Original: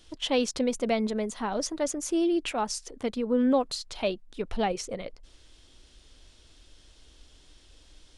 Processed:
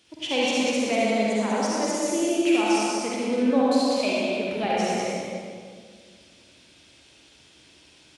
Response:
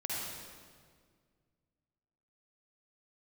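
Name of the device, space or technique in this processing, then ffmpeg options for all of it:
PA in a hall: -filter_complex "[0:a]highpass=76,highpass=110,equalizer=frequency=2400:width_type=o:width=0.36:gain=8,aecho=1:1:194:0.631[link_01];[1:a]atrim=start_sample=2205[link_02];[link_01][link_02]afir=irnorm=-1:irlink=0"

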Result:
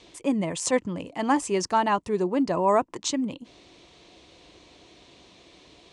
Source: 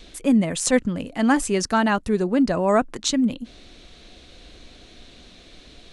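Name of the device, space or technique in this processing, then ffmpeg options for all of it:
car door speaker: -af "highpass=100,equalizer=frequency=230:width_type=q:width=4:gain=-8,equalizer=frequency=340:width_type=q:width=4:gain=4,equalizer=frequency=970:width_type=q:width=4:gain=9,equalizer=frequency=1500:width_type=q:width=4:gain=-7,equalizer=frequency=3900:width_type=q:width=4:gain=-4,lowpass=frequency=8900:width=0.5412,lowpass=frequency=8900:width=1.3066,volume=-3.5dB"

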